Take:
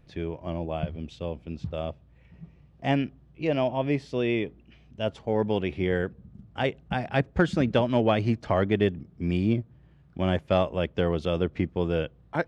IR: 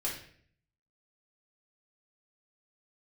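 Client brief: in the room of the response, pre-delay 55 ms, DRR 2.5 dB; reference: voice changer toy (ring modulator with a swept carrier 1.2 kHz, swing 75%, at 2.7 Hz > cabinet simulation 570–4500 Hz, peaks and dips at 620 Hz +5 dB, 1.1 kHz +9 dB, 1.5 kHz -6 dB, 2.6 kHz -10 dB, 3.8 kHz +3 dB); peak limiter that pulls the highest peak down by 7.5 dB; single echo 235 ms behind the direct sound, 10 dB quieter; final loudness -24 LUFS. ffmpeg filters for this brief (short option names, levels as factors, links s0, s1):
-filter_complex "[0:a]alimiter=limit=0.141:level=0:latency=1,aecho=1:1:235:0.316,asplit=2[s0][s1];[1:a]atrim=start_sample=2205,adelay=55[s2];[s1][s2]afir=irnorm=-1:irlink=0,volume=0.473[s3];[s0][s3]amix=inputs=2:normalize=0,aeval=exprs='val(0)*sin(2*PI*1200*n/s+1200*0.75/2.7*sin(2*PI*2.7*n/s))':c=same,highpass=570,equalizer=f=620:t=q:w=4:g=5,equalizer=f=1100:t=q:w=4:g=9,equalizer=f=1500:t=q:w=4:g=-6,equalizer=f=2600:t=q:w=4:g=-10,equalizer=f=3800:t=q:w=4:g=3,lowpass=f=4500:w=0.5412,lowpass=f=4500:w=1.3066,volume=2"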